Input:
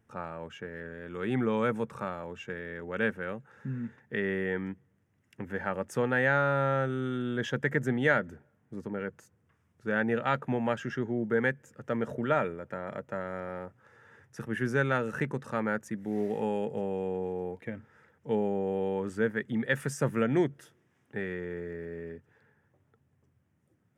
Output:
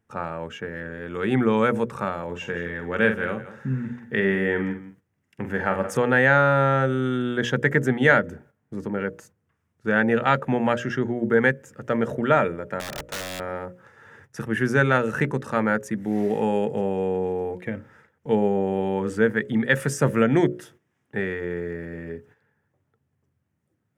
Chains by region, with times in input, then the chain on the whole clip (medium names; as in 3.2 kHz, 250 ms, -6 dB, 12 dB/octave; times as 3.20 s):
2.24–5.97 s: doubling 46 ms -8 dB + delay 172 ms -14.5 dB
12.80–13.40 s: bass shelf 83 Hz -3 dB + integer overflow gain 33 dB + loudspeaker Doppler distortion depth 0.1 ms
whole clip: hum notches 60/120/180/240/300/360/420/480/540/600 Hz; gate -59 dBFS, range -11 dB; trim +8.5 dB